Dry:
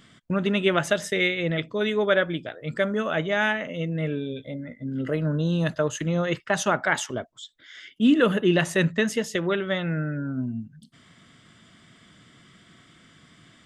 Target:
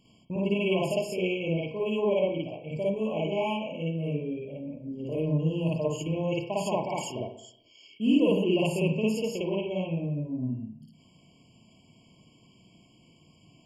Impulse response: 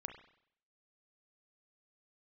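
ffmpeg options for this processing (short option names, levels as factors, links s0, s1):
-filter_complex "[0:a]asplit=2[s0][s1];[1:a]atrim=start_sample=2205,adelay=55[s2];[s1][s2]afir=irnorm=-1:irlink=0,volume=2.37[s3];[s0][s3]amix=inputs=2:normalize=0,afftfilt=real='re*eq(mod(floor(b*sr/1024/1100),2),0)':imag='im*eq(mod(floor(b*sr/1024/1100),2),0)':win_size=1024:overlap=0.75,volume=0.376"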